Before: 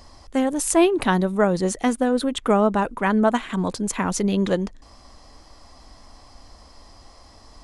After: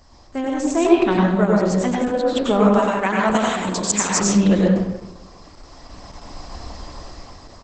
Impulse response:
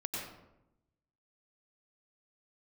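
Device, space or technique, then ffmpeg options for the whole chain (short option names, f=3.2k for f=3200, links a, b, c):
speakerphone in a meeting room: -filter_complex "[0:a]asplit=3[a][b][c];[a]afade=t=out:st=2.63:d=0.02[d];[b]aemphasis=mode=production:type=riaa,afade=t=in:st=2.63:d=0.02,afade=t=out:st=4.2:d=0.02[e];[c]afade=t=in:st=4.2:d=0.02[f];[d][e][f]amix=inputs=3:normalize=0[g];[1:a]atrim=start_sample=2205[h];[g][h]afir=irnorm=-1:irlink=0,asplit=2[i][j];[j]adelay=260,highpass=300,lowpass=3.4k,asoftclip=type=hard:threshold=-11dB,volume=-17dB[k];[i][k]amix=inputs=2:normalize=0,dynaudnorm=f=370:g=7:m=14.5dB,volume=-1dB" -ar 48000 -c:a libopus -b:a 12k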